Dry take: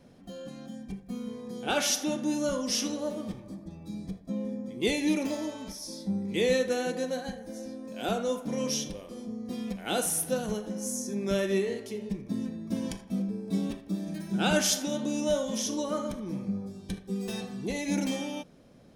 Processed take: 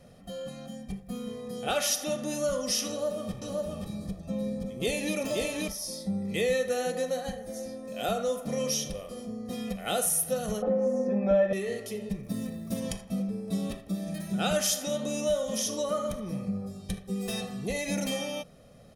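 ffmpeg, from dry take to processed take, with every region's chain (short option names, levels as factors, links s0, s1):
-filter_complex "[0:a]asettb=1/sr,asplit=3[s0][s1][s2];[s0]atrim=end=2.894[s3];[s1]atrim=start=2.89:end=5.68,asetpts=PTS-STARTPTS,afade=t=in:d=0.004:c=qsin,afade=t=out:st=2.786:d=0.004:c=qsin,bandreject=f=2000:w=14,aecho=1:1:525:0.708,atrim=end_sample=123039[s4];[s2]atrim=start=5.676[s5];[s3][s4]acrossfade=d=0.004:c1=hsin:c2=qsin[s6];[s6][s5]acrossfade=d=0.004:c1=qsin:c2=hsin,asettb=1/sr,asplit=3[s7][s8][s9];[s7]atrim=end=10.624[s10];[s8]atrim=start=10.62:end=11.53,asetpts=PTS-STARTPTS,afade=t=in:d=0.004:c=qsin,afade=t=out:st=0.906:d=0.004:c=qsin,lowpass=1800,equalizer=f=550:t=o:w=2.5:g=11,aecho=1:1:3.9:0.95,atrim=end_sample=40131[s11];[s9]atrim=start=11.526[s12];[s10][s11]acrossfade=d=0.004:c1=hsin:c2=qsin[s13];[s13][s12]acrossfade=d=0.004:c1=qsin:c2=hsin,asettb=1/sr,asplit=3[s14][s15][s16];[s14]atrim=end=12.234[s17];[s15]atrim=start=12.23:end=12.8,asetpts=PTS-STARTPTS,afade=t=in:d=0.004:c=qsin,afade=t=out:st=0.566:d=0.004:c=qsin,highshelf=f=10000:g=9.5,acrusher=bits=8:mode=log:mix=0:aa=0.000001[s18];[s16]atrim=start=12.796[s19];[s17][s18]acrossfade=d=0.004:c1=hsin:c2=qsin[s20];[s20][s19]acrossfade=d=0.004:c1=qsin:c2=hsin,equalizer=f=11000:t=o:w=0.63:g=6.5,aecho=1:1:1.6:0.63,acompressor=threshold=0.0355:ratio=2,volume=1.19"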